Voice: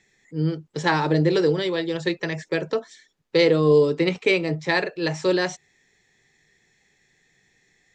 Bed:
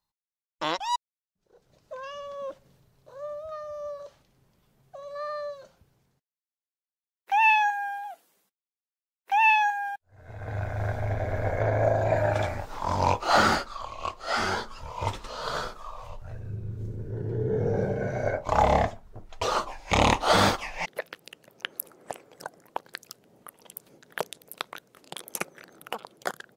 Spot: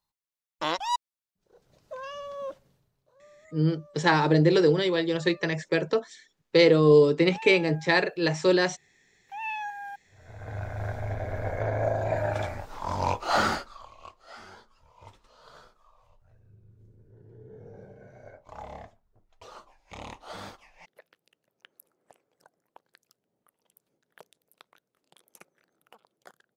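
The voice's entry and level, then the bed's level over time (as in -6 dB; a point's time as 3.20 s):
3.20 s, -0.5 dB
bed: 2.49 s 0 dB
3.22 s -19 dB
9.21 s -19 dB
10.05 s -3.5 dB
13.44 s -3.5 dB
14.44 s -21 dB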